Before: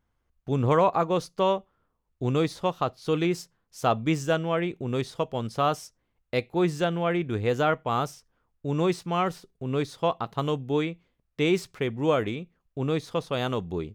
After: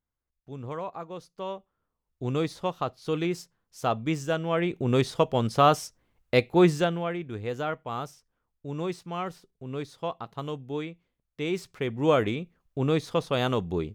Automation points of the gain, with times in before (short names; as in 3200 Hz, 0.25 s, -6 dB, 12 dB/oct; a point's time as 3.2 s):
1.21 s -14 dB
2.34 s -3 dB
4.35 s -3 dB
4.89 s +5 dB
6.66 s +5 dB
7.17 s -7 dB
11.43 s -7 dB
12.15 s +2 dB